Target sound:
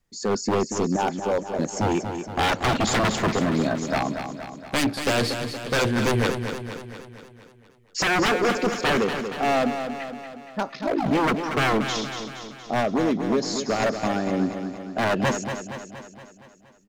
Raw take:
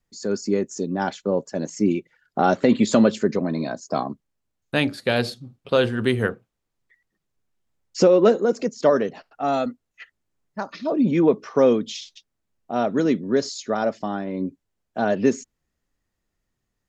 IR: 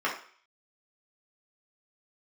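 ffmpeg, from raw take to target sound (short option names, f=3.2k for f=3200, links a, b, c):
-filter_complex "[0:a]asettb=1/sr,asplit=3[a][b][c];[a]atrim=end=0.964[d];[b]atrim=start=0.96:end=1.59,asetpts=PTS-STARTPTS,afade=t=in:d=0.004:c=qsin,afade=t=out:st=0.626:d=0.004:c=qsin,bandpass=f=830:t=q:w=1.1:csg=0[e];[c]atrim=start=1.586[f];[d][e]acrossfade=d=0.004:c1=hsin:c2=qsin[g];[g][f]acrossfade=d=0.004:c1=qsin:c2=hsin,asettb=1/sr,asplit=3[h][i][j];[h]atrim=end=12.804[k];[i]atrim=start=12.8:end=13.8,asetpts=PTS-STARTPTS,afade=t=in:d=0.004:c=qsin,afade=t=out:st=0.996:d=0.004:c=qsin,acompressor=threshold=-20dB:ratio=16[l];[j]atrim=start=13.796[m];[k][l]acrossfade=d=0.004:c1=hsin:c2=qsin[n];[n][m]acrossfade=d=0.004:c1=qsin:c2=hsin,aeval=exprs='0.112*(abs(mod(val(0)/0.112+3,4)-2)-1)':c=same,asplit=3[o][p][q];[o]afade=t=out:st=10.7:d=0.02[r];[p]aeval=exprs='val(0)*sin(2*PI*27*n/s)':c=same,afade=t=in:st=10.7:d=0.02,afade=t=out:st=11.1:d=0.02[s];[q]afade=t=in:st=11.1:d=0.02[t];[r][s][t]amix=inputs=3:normalize=0,asplit=2[u][v];[v]aecho=0:1:234|468|702|936|1170|1404|1638:0.398|0.227|0.129|0.0737|0.042|0.024|0.0137[w];[u][w]amix=inputs=2:normalize=0,volume=3dB"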